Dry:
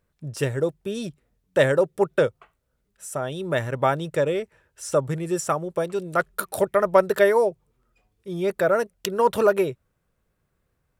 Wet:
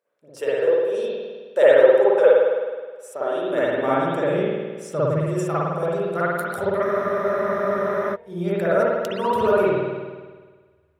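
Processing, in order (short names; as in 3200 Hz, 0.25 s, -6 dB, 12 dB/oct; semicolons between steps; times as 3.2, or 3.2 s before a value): high-pass sweep 500 Hz -> 82 Hz, 2.94–5.39; spring tank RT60 1.5 s, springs 52 ms, chirp 70 ms, DRR -9.5 dB; spectral freeze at 6.86, 1.29 s; gain -8.5 dB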